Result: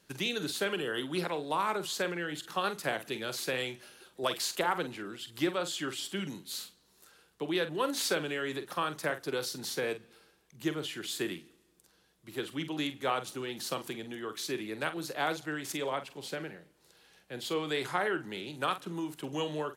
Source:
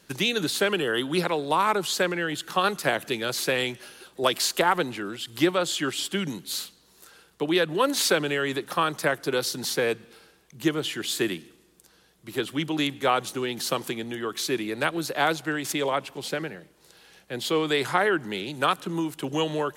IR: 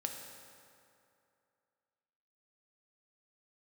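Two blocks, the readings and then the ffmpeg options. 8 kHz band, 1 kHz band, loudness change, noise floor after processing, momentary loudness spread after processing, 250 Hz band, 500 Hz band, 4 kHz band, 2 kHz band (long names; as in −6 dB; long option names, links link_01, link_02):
−8.0 dB, −8.0 dB, −8.0 dB, −68 dBFS, 9 LU, −8.0 dB, −8.0 dB, −8.0 dB, −8.0 dB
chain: -filter_complex "[0:a]asplit=2[link_01][link_02];[link_02]adelay=46,volume=-11dB[link_03];[link_01][link_03]amix=inputs=2:normalize=0,volume=-8.5dB"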